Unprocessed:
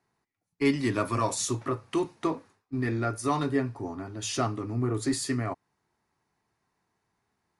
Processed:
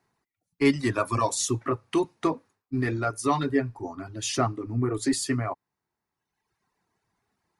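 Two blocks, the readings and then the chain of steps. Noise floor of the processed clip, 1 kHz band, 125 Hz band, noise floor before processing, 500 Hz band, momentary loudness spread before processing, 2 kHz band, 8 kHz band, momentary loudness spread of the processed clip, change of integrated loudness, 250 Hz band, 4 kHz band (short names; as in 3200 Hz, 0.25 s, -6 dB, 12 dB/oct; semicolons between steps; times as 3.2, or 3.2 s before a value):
under -85 dBFS, +3.0 dB, +1.5 dB, -82 dBFS, +2.5 dB, 8 LU, +3.0 dB, +3.0 dB, 10 LU, +2.5 dB, +2.0 dB, +2.5 dB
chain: reverb removal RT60 1.2 s; gain +3.5 dB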